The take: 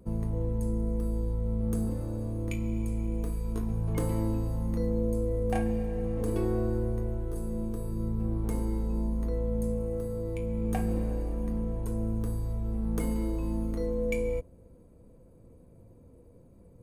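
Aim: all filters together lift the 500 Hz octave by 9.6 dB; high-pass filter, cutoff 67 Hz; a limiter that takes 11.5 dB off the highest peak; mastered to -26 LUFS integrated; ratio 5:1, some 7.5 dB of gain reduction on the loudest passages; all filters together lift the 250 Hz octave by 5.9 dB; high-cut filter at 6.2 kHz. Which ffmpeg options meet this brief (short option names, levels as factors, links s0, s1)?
-af "highpass=67,lowpass=6200,equalizer=f=250:t=o:g=5,equalizer=f=500:t=o:g=9,acompressor=threshold=0.0447:ratio=5,volume=3.76,alimiter=limit=0.119:level=0:latency=1"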